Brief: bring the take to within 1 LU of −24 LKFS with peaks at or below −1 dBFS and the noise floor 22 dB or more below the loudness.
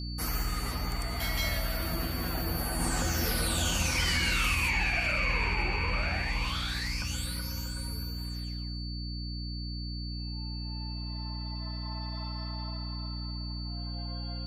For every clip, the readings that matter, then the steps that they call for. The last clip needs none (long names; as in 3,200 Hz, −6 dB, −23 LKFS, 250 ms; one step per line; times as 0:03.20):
mains hum 60 Hz; hum harmonics up to 300 Hz; level of the hum −34 dBFS; interfering tone 4,500 Hz; level of the tone −42 dBFS; integrated loudness −32.0 LKFS; sample peak −17.0 dBFS; target loudness −24.0 LKFS
→ hum removal 60 Hz, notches 5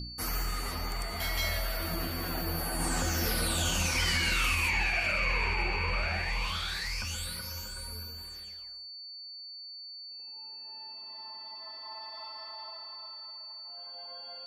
mains hum none found; interfering tone 4,500 Hz; level of the tone −42 dBFS
→ notch filter 4,500 Hz, Q 30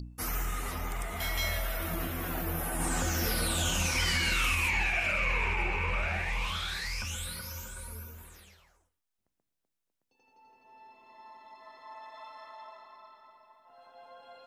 interfering tone none found; integrated loudness −30.5 LKFS; sample peak −18.0 dBFS; target loudness −24.0 LKFS
→ level +6.5 dB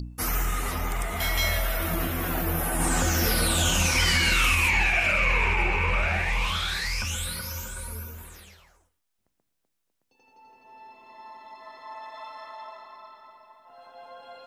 integrated loudness −24.0 LKFS; sample peak −11.5 dBFS; background noise floor −77 dBFS